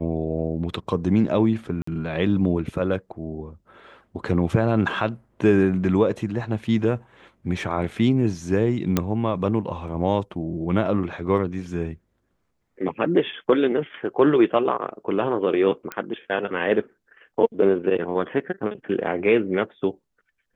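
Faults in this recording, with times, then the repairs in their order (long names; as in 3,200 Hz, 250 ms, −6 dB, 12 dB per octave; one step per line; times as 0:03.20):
0:01.82–0:01.87: drop-out 54 ms
0:08.97: click −6 dBFS
0:15.92: click −14 dBFS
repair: click removal
repair the gap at 0:01.82, 54 ms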